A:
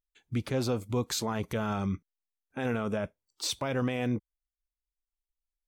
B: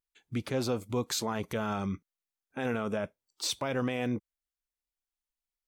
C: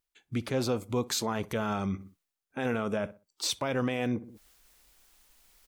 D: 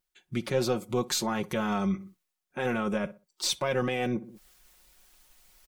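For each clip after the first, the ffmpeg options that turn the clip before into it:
-af "lowshelf=f=100:g=-9.5"
-filter_complex "[0:a]asplit=2[a][b];[b]adelay=62,lowpass=f=1.6k:p=1,volume=-20dB,asplit=2[c][d];[d]adelay=62,lowpass=f=1.6k:p=1,volume=0.35,asplit=2[e][f];[f]adelay=62,lowpass=f=1.6k:p=1,volume=0.35[g];[a][c][e][g]amix=inputs=4:normalize=0,areverse,acompressor=mode=upward:threshold=-40dB:ratio=2.5,areverse,volume=1.5dB"
-af "aeval=exprs='0.133*(cos(1*acos(clip(val(0)/0.133,-1,1)))-cos(1*PI/2))+0.00841*(cos(2*acos(clip(val(0)/0.133,-1,1)))-cos(2*PI/2))':c=same,aecho=1:1:5.5:0.75"

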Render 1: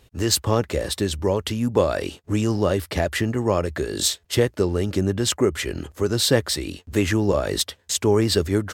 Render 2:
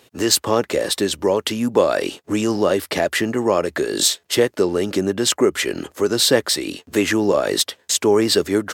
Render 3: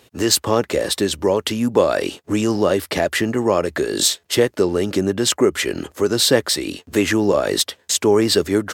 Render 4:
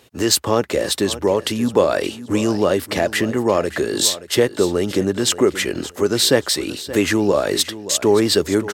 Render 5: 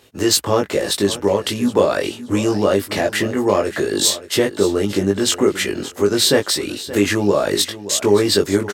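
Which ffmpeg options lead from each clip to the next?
-filter_complex "[0:a]asplit=2[a][b];[b]alimiter=limit=-16dB:level=0:latency=1:release=229,volume=-2.5dB[c];[a][c]amix=inputs=2:normalize=0,highpass=240,volume=2dB"
-af "lowshelf=f=87:g=10.5"
-af "aecho=1:1:575|1150:0.178|0.0391"
-filter_complex "[0:a]asplit=2[a][b];[b]adelay=20,volume=-3dB[c];[a][c]amix=inputs=2:normalize=0,volume=-1dB"

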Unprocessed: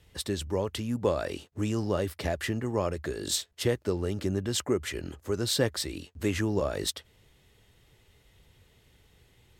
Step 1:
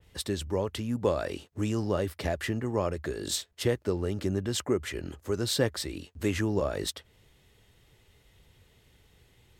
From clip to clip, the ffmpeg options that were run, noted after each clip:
-af "adynamicequalizer=threshold=0.00562:dfrequency=2700:dqfactor=0.7:tfrequency=2700:tqfactor=0.7:attack=5:release=100:ratio=0.375:range=2:mode=cutabove:tftype=highshelf"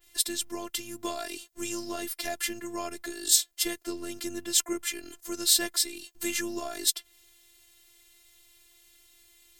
-af "afftfilt=real='hypot(re,im)*cos(PI*b)':imag='0':win_size=512:overlap=0.75,crystalizer=i=8:c=0,volume=-4dB"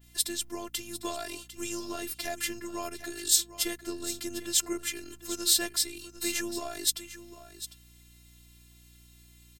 -af "aeval=exprs='val(0)+0.00158*(sin(2*PI*60*n/s)+sin(2*PI*2*60*n/s)/2+sin(2*PI*3*60*n/s)/3+sin(2*PI*4*60*n/s)/4+sin(2*PI*5*60*n/s)/5)':c=same,aecho=1:1:751:0.211,volume=-1.5dB"

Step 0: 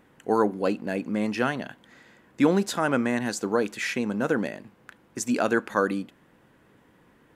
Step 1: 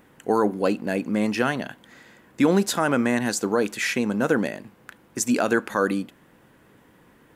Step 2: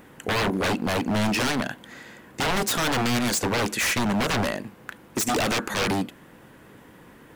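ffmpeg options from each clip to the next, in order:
-af "highshelf=f=9k:g=7.5,alimiter=level_in=11.5dB:limit=-1dB:release=50:level=0:latency=1,volume=-8dB"
-af "aeval=exprs='0.0596*(abs(mod(val(0)/0.0596+3,4)-2)-1)':c=same,volume=6dB"

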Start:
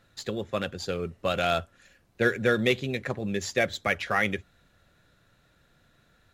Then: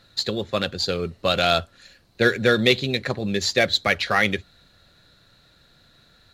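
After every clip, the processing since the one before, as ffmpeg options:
-af "equalizer=f=4.2k:w=3.1:g=13.5,volume=5dB"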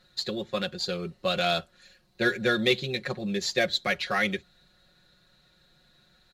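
-af "aecho=1:1:5.5:0.72,volume=-8dB"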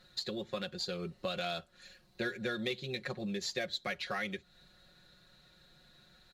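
-af "acompressor=threshold=-37dB:ratio=3"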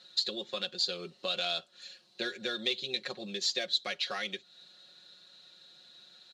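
-af "aexciter=amount=3.3:drive=6.9:freq=2.9k,highpass=270,lowpass=4.5k"

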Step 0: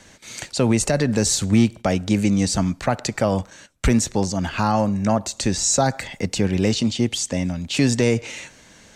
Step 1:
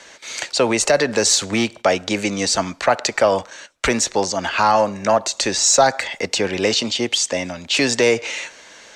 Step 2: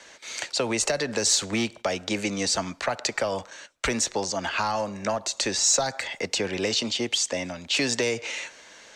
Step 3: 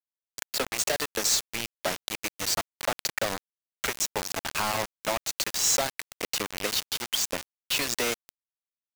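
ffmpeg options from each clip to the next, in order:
-filter_complex "[0:a]acrossover=split=380 7400:gain=0.1 1 0.224[a][b][c];[a][b][c]amix=inputs=3:normalize=0,bandreject=f=770:w=22,asplit=2[d][e];[e]aeval=exprs='clip(val(0),-1,0.133)':c=same,volume=-6.5dB[f];[d][f]amix=inputs=2:normalize=0,volume=4.5dB"
-filter_complex "[0:a]acrossover=split=180|3000[a][b][c];[b]acompressor=threshold=-18dB:ratio=6[d];[a][d][c]amix=inputs=3:normalize=0,volume=-5.5dB"
-filter_complex "[0:a]acrossover=split=370|820|4100[a][b][c][d];[a]alimiter=level_in=6dB:limit=-24dB:level=0:latency=1:release=469,volume=-6dB[e];[e][b][c][d]amix=inputs=4:normalize=0,acrusher=bits=3:mix=0:aa=0.000001,volume=-3dB"

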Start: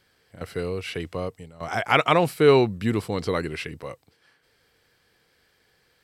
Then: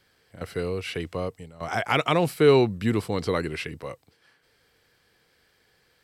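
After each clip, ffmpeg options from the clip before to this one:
-filter_complex "[0:a]acrossover=split=480|3000[a][b][c];[b]acompressor=threshold=-22dB:ratio=6[d];[a][d][c]amix=inputs=3:normalize=0"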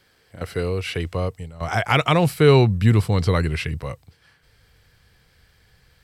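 -af "asubboost=boost=7.5:cutoff=120,volume=4.5dB"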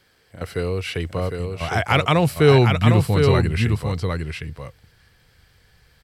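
-af "aecho=1:1:756:0.562"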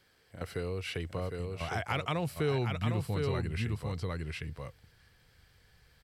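-af "acompressor=threshold=-28dB:ratio=2,volume=-7dB"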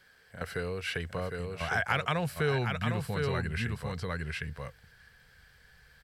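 -af "equalizer=f=100:t=o:w=0.33:g=-7,equalizer=f=315:t=o:w=0.33:g=-11,equalizer=f=1.6k:t=o:w=0.33:g=10,volume=2.5dB"

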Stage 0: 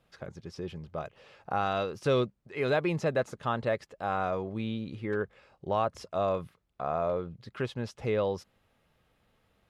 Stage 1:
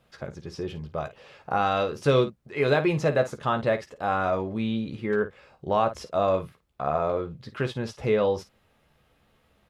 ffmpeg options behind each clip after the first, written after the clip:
-af "aecho=1:1:14|53:0.398|0.237,volume=4.5dB"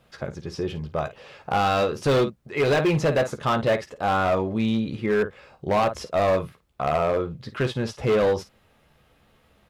-af "asoftclip=type=hard:threshold=-21dB,volume=4.5dB"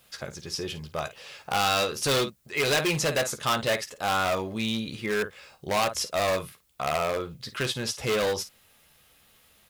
-af "crystalizer=i=8.5:c=0,volume=-7.5dB"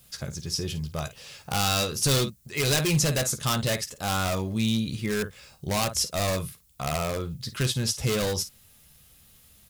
-af "bass=f=250:g=14,treble=f=4k:g=10,volume=-4dB"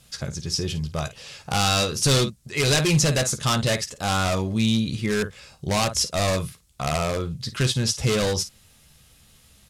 -af "lowpass=9.1k,volume=4dB"

